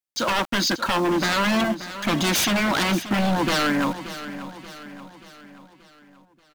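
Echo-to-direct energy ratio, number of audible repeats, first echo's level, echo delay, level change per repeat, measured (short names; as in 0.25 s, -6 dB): -11.5 dB, 4, -13.0 dB, 0.581 s, -6.0 dB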